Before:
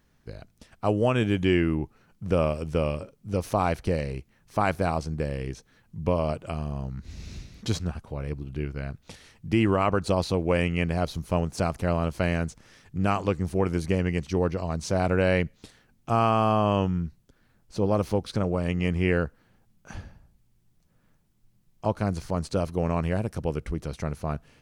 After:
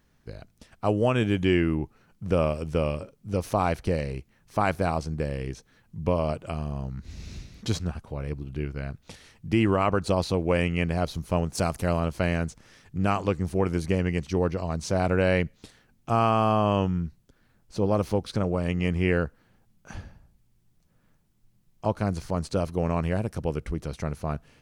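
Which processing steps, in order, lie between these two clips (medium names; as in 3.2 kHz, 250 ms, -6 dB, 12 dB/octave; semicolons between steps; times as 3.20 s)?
11.55–12.00 s: treble shelf 5.8 kHz +10 dB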